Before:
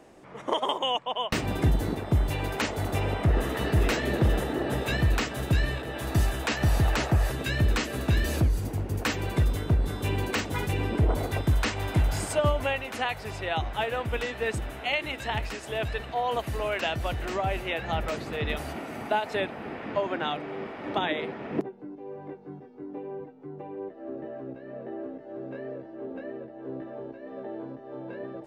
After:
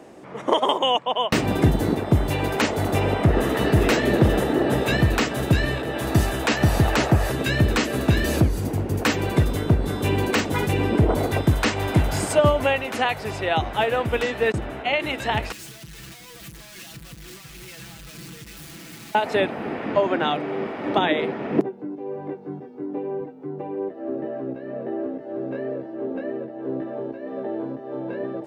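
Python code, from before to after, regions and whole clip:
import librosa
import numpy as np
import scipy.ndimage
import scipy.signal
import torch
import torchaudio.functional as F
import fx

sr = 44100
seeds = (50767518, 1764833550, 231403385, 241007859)

y = fx.chain(x, sr, fx.lowpass(hz=2700.0, slope=6),
    fx.gate_hold(open_db=-28.0, close_db=-38.0, hold_ms=71.0, range_db=-21, attack_ms=1.4, release_ms=100.0), at=(14.52, 15.0))
y = fx.chain(y, sr, fx.clip_1bit(),
    fx.tone_stack(knobs='6-0-2'),
    fx.comb(ms=6.0, depth=0.85), at=(15.52, 19.15))
y = fx.highpass(y, sr, hz=260.0, slope=6)
y = fx.low_shelf(y, sr, hz=460.0, db=8.5)
y = y * librosa.db_to_amplitude(5.5)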